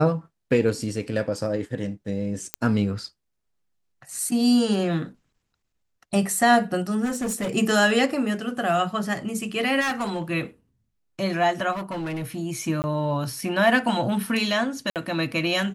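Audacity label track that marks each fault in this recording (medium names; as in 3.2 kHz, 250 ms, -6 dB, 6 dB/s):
2.540000	2.540000	pop -7 dBFS
7.040000	7.540000	clipped -23 dBFS
9.800000	10.310000	clipped -22 dBFS
11.720000	12.270000	clipped -26.5 dBFS
12.820000	12.840000	dropout 19 ms
14.900000	14.960000	dropout 58 ms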